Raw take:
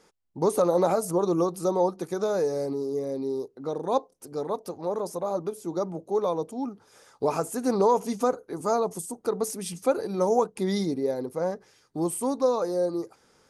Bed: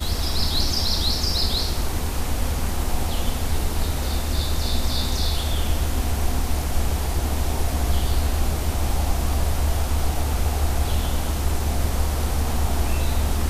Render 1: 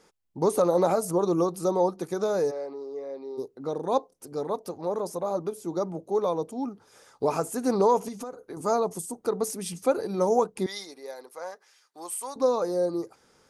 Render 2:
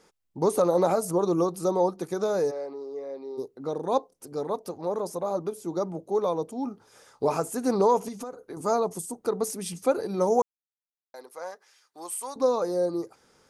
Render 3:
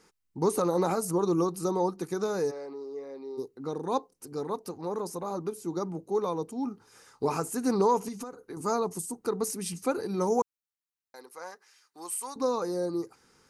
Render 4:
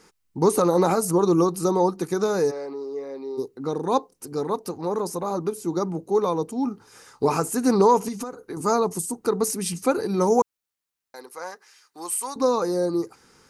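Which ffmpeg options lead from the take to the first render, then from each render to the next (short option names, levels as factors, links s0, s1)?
-filter_complex "[0:a]asplit=3[s0][s1][s2];[s0]afade=t=out:st=2.5:d=0.02[s3];[s1]highpass=570,lowpass=2800,afade=t=in:st=2.5:d=0.02,afade=t=out:st=3.37:d=0.02[s4];[s2]afade=t=in:st=3.37:d=0.02[s5];[s3][s4][s5]amix=inputs=3:normalize=0,asettb=1/sr,asplit=3[s6][s7][s8];[s6]atrim=end=8.084[s9];[s7]atrim=start=8.08:end=8.57,asetpts=PTS-STARTPTS,afade=t=in:d=0.004:c=qsin,afade=t=out:st=0.486:d=0.004:c=qsin,acompressor=threshold=0.02:ratio=5:attack=3.2:release=140:knee=1:detection=peak[s10];[s8]atrim=start=8.566[s11];[s9][s10]acrossfade=d=0.004:c1=hsin:c2=qsin[s12];[s12][s11]acrossfade=d=0.004:c1=qsin:c2=hsin,asettb=1/sr,asplit=3[s13][s14][s15];[s13]atrim=end=10.664[s16];[s14]atrim=start=10.66:end=12.36,asetpts=PTS-STARTPTS,afade=t=in:d=0.004:c=qsin,afade=t=out:st=1.696:d=0.004:c=qsin,highpass=960[s17];[s15]atrim=start=12.356[s18];[s16][s17]acrossfade=d=0.004:c1=hsin:c2=qsin[s19];[s19][s18]acrossfade=d=0.004:c1=qsin:c2=hsin"
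-filter_complex "[0:a]asettb=1/sr,asplit=3[s0][s1][s2];[s0]atrim=end=6.634[s3];[s1]atrim=start=6.63:end=7.37,asetpts=PTS-STARTPTS,afade=t=in:d=0.004:c=qsin,afade=t=out:st=0.736:d=0.004:c=qsin,asplit=2[s4][s5];[s5]adelay=28,volume=0.251[s6];[s4][s6]amix=inputs=2:normalize=0,atrim=end_sample=32634[s7];[s2]atrim=start=7.366[s8];[s3][s7]acrossfade=d=0.004:c1=hsin:c2=qsin[s9];[s9][s8]acrossfade=d=0.004:c1=qsin:c2=hsin,asplit=3[s10][s11][s12];[s10]atrim=end=10.42,asetpts=PTS-STARTPTS,afade=t=out:st=10.416:d=0.004:c=hsin[s13];[s11]atrim=start=10.42:end=11.14,asetpts=PTS-STARTPTS,volume=0[s14];[s12]atrim=start=11.14,asetpts=PTS-STARTPTS,afade=t=in:d=0.004:c=hsin[s15];[s13][s14][s15]concat=n=3:v=0:a=1"
-af "equalizer=f=610:t=o:w=0.55:g=-10.5,bandreject=f=3400:w=11"
-af "volume=2.24"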